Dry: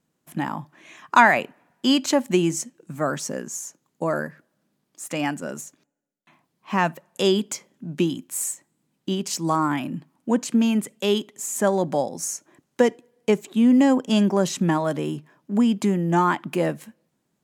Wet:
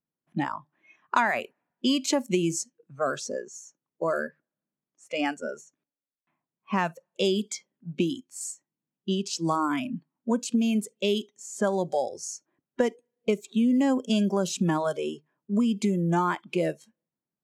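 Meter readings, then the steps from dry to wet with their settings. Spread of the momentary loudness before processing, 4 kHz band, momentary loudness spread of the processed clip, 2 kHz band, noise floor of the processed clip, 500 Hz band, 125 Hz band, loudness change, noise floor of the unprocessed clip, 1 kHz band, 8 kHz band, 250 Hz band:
16 LU, -4.0 dB, 13 LU, -7.0 dB, under -85 dBFS, -4.5 dB, -4.5 dB, -5.0 dB, -75 dBFS, -6.0 dB, -6.0 dB, -5.0 dB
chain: low-pass opened by the level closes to 2300 Hz, open at -17 dBFS; spectral noise reduction 19 dB; compressor 3:1, threshold -22 dBFS, peak gain reduction 10.5 dB

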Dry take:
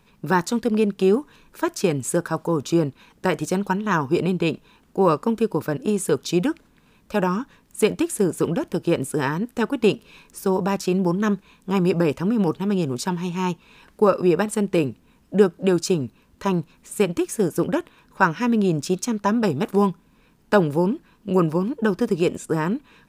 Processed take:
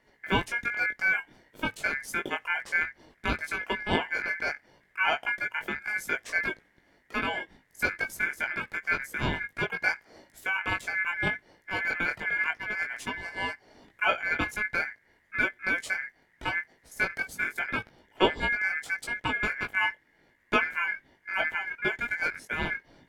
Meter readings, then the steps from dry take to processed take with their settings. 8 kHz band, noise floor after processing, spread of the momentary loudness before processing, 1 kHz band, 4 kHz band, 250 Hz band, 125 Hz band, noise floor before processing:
-13.5 dB, -67 dBFS, 7 LU, -6.5 dB, -1.5 dB, -18.5 dB, -16.5 dB, -58 dBFS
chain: chorus 0.78 Hz, delay 17.5 ms, depth 3.2 ms; ring modulator 1900 Hz; tilt shelf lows +9 dB, about 770 Hz; gain +2 dB

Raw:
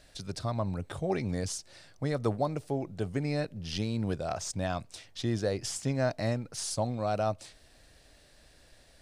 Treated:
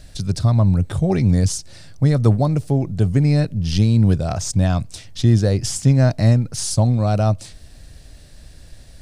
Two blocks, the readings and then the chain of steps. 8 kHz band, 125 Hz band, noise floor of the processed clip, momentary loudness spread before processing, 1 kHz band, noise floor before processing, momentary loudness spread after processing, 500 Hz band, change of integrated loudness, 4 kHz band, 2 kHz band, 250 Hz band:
+11.0 dB, +19.5 dB, -44 dBFS, 6 LU, +6.5 dB, -60 dBFS, 6 LU, +7.5 dB, +15.0 dB, +9.5 dB, +7.0 dB, +14.5 dB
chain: tone controls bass +14 dB, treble +5 dB; gain +6.5 dB

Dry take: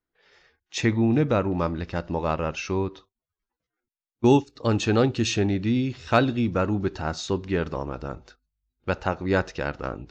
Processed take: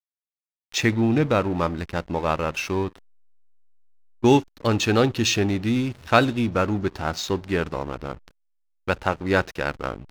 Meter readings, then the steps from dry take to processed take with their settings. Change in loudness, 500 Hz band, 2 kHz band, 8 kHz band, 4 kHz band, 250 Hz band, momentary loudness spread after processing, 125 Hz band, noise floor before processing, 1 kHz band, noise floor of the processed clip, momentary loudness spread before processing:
+1.5 dB, +1.5 dB, +4.5 dB, n/a, +5.0 dB, +1.0 dB, 10 LU, 0.0 dB, under -85 dBFS, +3.0 dB, under -85 dBFS, 11 LU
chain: backlash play -34.5 dBFS; tilt shelf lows -3 dB; gain +3.5 dB

